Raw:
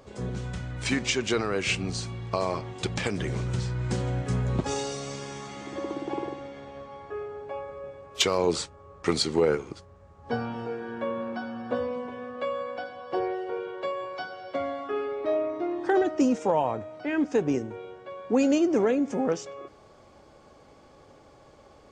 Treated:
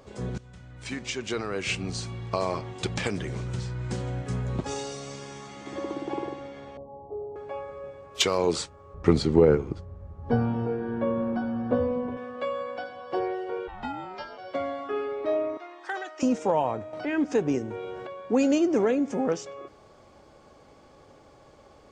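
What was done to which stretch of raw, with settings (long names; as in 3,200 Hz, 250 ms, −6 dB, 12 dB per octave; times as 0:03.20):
0:00.38–0:02.18: fade in, from −17.5 dB
0:03.19–0:05.66: clip gain −3 dB
0:06.77–0:07.36: Butterworth low-pass 960 Hz 72 dB per octave
0:08.94–0:12.17: spectral tilt −3.5 dB per octave
0:13.67–0:14.37: ring modulation 450 Hz → 110 Hz
0:15.57–0:16.23: high-pass filter 1,100 Hz
0:16.93–0:18.07: upward compression, threshold −27 dBFS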